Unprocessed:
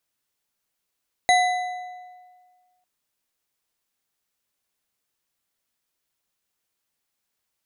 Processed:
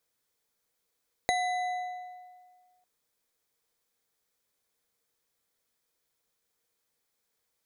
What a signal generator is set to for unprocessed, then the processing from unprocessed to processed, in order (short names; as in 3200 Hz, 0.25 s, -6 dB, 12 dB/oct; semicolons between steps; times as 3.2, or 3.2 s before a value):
metal hit bar, lowest mode 728 Hz, modes 5, decay 1.69 s, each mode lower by 4.5 dB, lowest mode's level -14 dB
bell 470 Hz +10 dB 0.25 oct; notch 2800 Hz, Q 8.7; compressor 4:1, threshold -28 dBFS